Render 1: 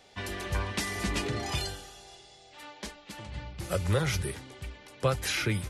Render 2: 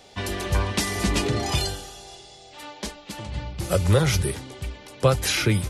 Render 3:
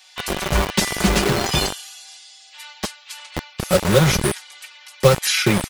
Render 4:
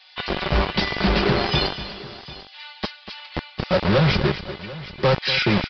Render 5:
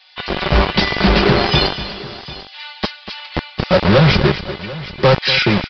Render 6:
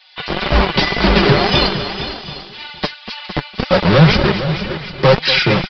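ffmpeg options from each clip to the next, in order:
ffmpeg -i in.wav -af "equalizer=frequency=1800:width=1.1:gain=-4.5,volume=8.5dB" out.wav
ffmpeg -i in.wav -filter_complex "[0:a]aecho=1:1:5.4:0.75,acrossover=split=1100[link_01][link_02];[link_01]acrusher=bits=3:mix=0:aa=0.000001[link_03];[link_03][link_02]amix=inputs=2:normalize=0,volume=3dB" out.wav
ffmpeg -i in.wav -af "aresample=11025,volume=14dB,asoftclip=hard,volume=-14dB,aresample=44100,aecho=1:1:241|744:0.224|0.133" out.wav
ffmpeg -i in.wav -af "dynaudnorm=framelen=140:gausssize=5:maxgain=5.5dB,volume=1.5dB" out.wav
ffmpeg -i in.wav -af "aecho=1:1:458:0.282,flanger=delay=3:depth=4.4:regen=35:speed=1.9:shape=triangular,volume=4.5dB" out.wav

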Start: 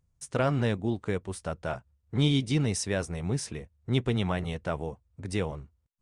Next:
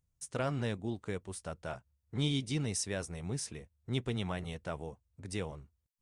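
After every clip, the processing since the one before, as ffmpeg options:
ffmpeg -i in.wav -af "highshelf=frequency=4500:gain=7.5,volume=-8dB" out.wav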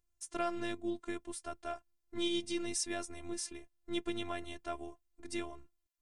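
ffmpeg -i in.wav -af "afftfilt=real='hypot(re,im)*cos(PI*b)':imag='0':win_size=512:overlap=0.75,volume=3dB" out.wav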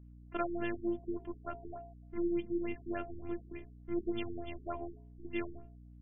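ffmpeg -i in.wav -af "bandreject=frequency=52.74:width_type=h:width=4,bandreject=frequency=105.48:width_type=h:width=4,bandreject=frequency=158.22:width_type=h:width=4,bandreject=frequency=210.96:width_type=h:width=4,bandreject=frequency=263.7:width_type=h:width=4,bandreject=frequency=316.44:width_type=h:width=4,bandreject=frequency=369.18:width_type=h:width=4,bandreject=frequency=421.92:width_type=h:width=4,bandreject=frequency=474.66:width_type=h:width=4,bandreject=frequency=527.4:width_type=h:width=4,bandreject=frequency=580.14:width_type=h:width=4,bandreject=frequency=632.88:width_type=h:width=4,bandreject=frequency=685.62:width_type=h:width=4,bandreject=frequency=738.36:width_type=h:width=4,bandreject=frequency=791.1:width_type=h:width=4,bandreject=frequency=843.84:width_type=h:width=4,bandreject=frequency=896.58:width_type=h:width=4,bandreject=frequency=949.32:width_type=h:width=4,bandreject=frequency=1002.06:width_type=h:width=4,aeval=exprs='val(0)+0.00178*(sin(2*PI*60*n/s)+sin(2*PI*2*60*n/s)/2+sin(2*PI*3*60*n/s)/3+sin(2*PI*4*60*n/s)/4+sin(2*PI*5*60*n/s)/5)':channel_layout=same,afftfilt=real='re*lt(b*sr/1024,420*pow(3500/420,0.5+0.5*sin(2*PI*3.4*pts/sr)))':imag='im*lt(b*sr/1024,420*pow(3500/420,0.5+0.5*sin(2*PI*3.4*pts/sr)))':win_size=1024:overlap=0.75,volume=2.5dB" out.wav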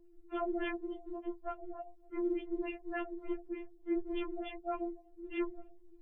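ffmpeg -i in.wav -af "afftfilt=real='hypot(re,im)*cos(2*PI*random(0))':imag='hypot(re,im)*sin(2*PI*random(1))':win_size=512:overlap=0.75,alimiter=level_in=14dB:limit=-24dB:level=0:latency=1:release=10,volume=-14dB,afftfilt=real='re*4*eq(mod(b,16),0)':imag='im*4*eq(mod(b,16),0)':win_size=2048:overlap=0.75,volume=9dB" out.wav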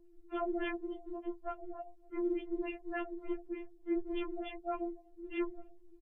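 ffmpeg -i in.wav -af "aresample=32000,aresample=44100" out.wav

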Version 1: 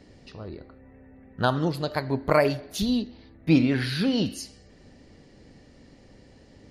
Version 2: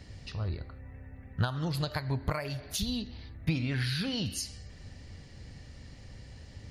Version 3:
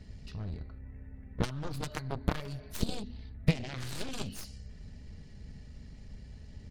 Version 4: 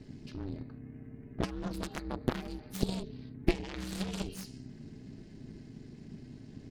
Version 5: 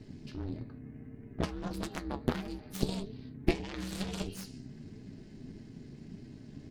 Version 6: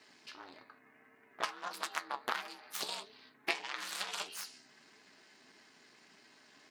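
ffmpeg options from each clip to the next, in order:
ffmpeg -i in.wav -af "equalizer=frequency=300:width_type=o:width=2.7:gain=-13.5,acompressor=threshold=-36dB:ratio=16,equalizer=frequency=98:width_type=o:width=2.2:gain=10,volume=5dB" out.wav
ffmpeg -i in.wav -af "aecho=1:1:4.7:0.48,aeval=exprs='0.2*(cos(1*acos(clip(val(0)/0.2,-1,1)))-cos(1*PI/2))+0.0447*(cos(7*acos(clip(val(0)/0.2,-1,1)))-cos(7*PI/2))+0.0112*(cos(8*acos(clip(val(0)/0.2,-1,1)))-cos(8*PI/2))':channel_layout=same,lowshelf=frequency=300:gain=10.5,volume=-3dB" out.wav
ffmpeg -i in.wav -af "aeval=exprs='val(0)*sin(2*PI*190*n/s)':channel_layout=same,volume=1.5dB" out.wav
ffmpeg -i in.wav -af "flanger=delay=8.7:depth=6:regen=61:speed=1.6:shape=triangular,volume=4.5dB" out.wav
ffmpeg -i in.wav -af "highpass=frequency=1100:width_type=q:width=1.5,volume=3.5dB" out.wav

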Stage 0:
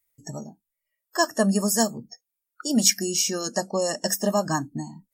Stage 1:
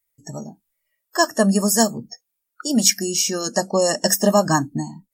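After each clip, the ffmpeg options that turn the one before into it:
ffmpeg -i in.wav -af "dynaudnorm=framelen=230:gausssize=5:maxgain=14dB,volume=-1dB" out.wav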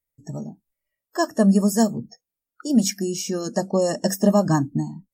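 ffmpeg -i in.wav -af "tiltshelf=frequency=650:gain=6.5,volume=-3.5dB" out.wav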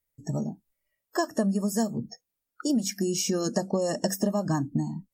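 ffmpeg -i in.wav -af "acompressor=threshold=-25dB:ratio=10,volume=2.5dB" out.wav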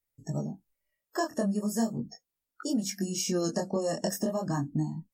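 ffmpeg -i in.wav -af "flanger=delay=18.5:depth=6.1:speed=0.39" out.wav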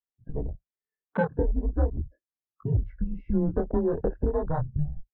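ffmpeg -i in.wav -af "highpass=frequency=160:width_type=q:width=0.5412,highpass=frequency=160:width_type=q:width=1.307,lowpass=frequency=2200:width_type=q:width=0.5176,lowpass=frequency=2200:width_type=q:width=0.7071,lowpass=frequency=2200:width_type=q:width=1.932,afreqshift=-160,afwtdn=0.0141,volume=5dB" out.wav

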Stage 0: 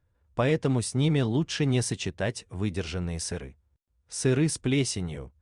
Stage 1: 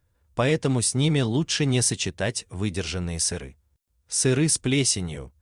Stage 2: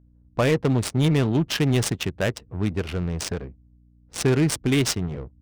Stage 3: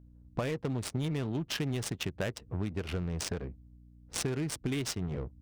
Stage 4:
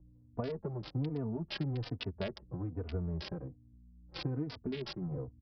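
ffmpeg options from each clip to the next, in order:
ffmpeg -i in.wav -af "highshelf=frequency=3800:gain=10,volume=2dB" out.wav
ffmpeg -i in.wav -af "adynamicsmooth=sensitivity=3:basefreq=500,aeval=exprs='val(0)+0.00141*(sin(2*PI*60*n/s)+sin(2*PI*2*60*n/s)/2+sin(2*PI*3*60*n/s)/3+sin(2*PI*4*60*n/s)/4+sin(2*PI*5*60*n/s)/5)':channel_layout=same,asoftclip=type=tanh:threshold=-13dB,volume=3dB" out.wav
ffmpeg -i in.wav -af "acompressor=threshold=-30dB:ratio=12" out.wav
ffmpeg -i in.wav -filter_complex "[0:a]acrossover=split=180|1200[link_01][link_02][link_03];[link_03]acrusher=bits=4:mix=0:aa=0.000001[link_04];[link_01][link_02][link_04]amix=inputs=3:normalize=0,aresample=11025,aresample=44100,asplit=2[link_05][link_06];[link_06]adelay=3.3,afreqshift=-1.2[link_07];[link_05][link_07]amix=inputs=2:normalize=1" out.wav

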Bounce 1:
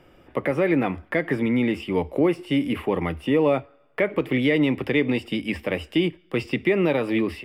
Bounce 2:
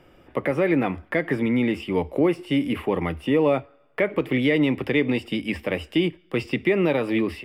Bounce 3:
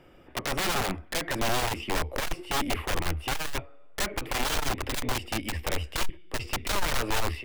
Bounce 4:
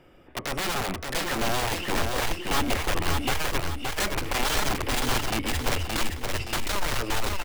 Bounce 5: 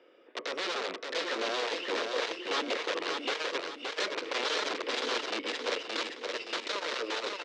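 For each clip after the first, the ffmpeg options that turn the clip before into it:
ffmpeg -i in.wav -af anull out.wav
ffmpeg -i in.wav -af "aeval=exprs='(mod(8.91*val(0)+1,2)-1)/8.91':channel_layout=same,asubboost=boost=11:cutoff=51,aeval=exprs='(tanh(14.1*val(0)+0.45)-tanh(0.45))/14.1':channel_layout=same" out.wav
ffmpeg -i in.wav -filter_complex "[0:a]dynaudnorm=framelen=390:gausssize=9:maxgain=4dB,asoftclip=type=tanh:threshold=-18.5dB,asplit=2[link_01][link_02];[link_02]aecho=0:1:571|1142|1713|2284|2855:0.631|0.259|0.106|0.0435|0.0178[link_03];[link_01][link_03]amix=inputs=2:normalize=0" out.wav
ffmpeg -i in.wav -af "highpass=frequency=320:width=0.5412,highpass=frequency=320:width=1.3066,equalizer=frequency=480:width_type=q:width=4:gain=8,equalizer=frequency=790:width_type=q:width=4:gain=-7,equalizer=frequency=3800:width_type=q:width=4:gain=4,lowpass=frequency=5700:width=0.5412,lowpass=frequency=5700:width=1.3066,volume=-4.5dB" out.wav

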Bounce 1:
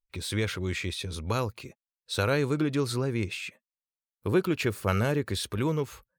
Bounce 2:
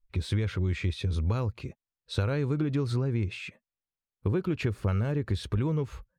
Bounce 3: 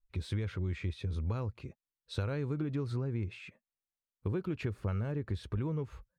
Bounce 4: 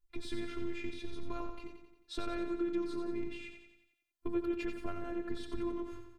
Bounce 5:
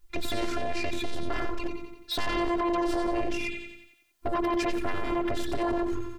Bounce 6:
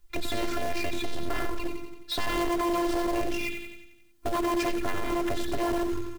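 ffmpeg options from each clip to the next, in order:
ffmpeg -i in.wav -af "aemphasis=mode=reproduction:type=bsi,acompressor=threshold=-24dB:ratio=6" out.wav
ffmpeg -i in.wav -af "adynamicequalizer=threshold=0.00251:dfrequency=2600:dqfactor=0.7:tfrequency=2600:tqfactor=0.7:attack=5:release=100:ratio=0.375:range=3:mode=cutabove:tftype=highshelf,volume=-6.5dB" out.wav
ffmpeg -i in.wav -af "aecho=1:1:89|178|267|356|445|534|623:0.422|0.228|0.123|0.0664|0.0359|0.0194|0.0105,afftfilt=real='hypot(re,im)*cos(PI*b)':imag='0':win_size=512:overlap=0.75,volume=3.5dB" out.wav
ffmpeg -i in.wav -filter_complex "[0:a]asplit=2[link_01][link_02];[link_02]alimiter=level_in=9dB:limit=-24dB:level=0:latency=1:release=19,volume=-9dB,volume=-0.5dB[link_03];[link_01][link_03]amix=inputs=2:normalize=0,aeval=exprs='0.106*sin(PI/2*3.98*val(0)/0.106)':channel_layout=same,volume=-4dB" out.wav
ffmpeg -i in.wav -filter_complex "[0:a]acrossover=split=360|4400[link_01][link_02][link_03];[link_01]aecho=1:1:258|516|774:0.0794|0.0373|0.0175[link_04];[link_02]acrusher=bits=2:mode=log:mix=0:aa=0.000001[link_05];[link_04][link_05][link_03]amix=inputs=3:normalize=0" out.wav

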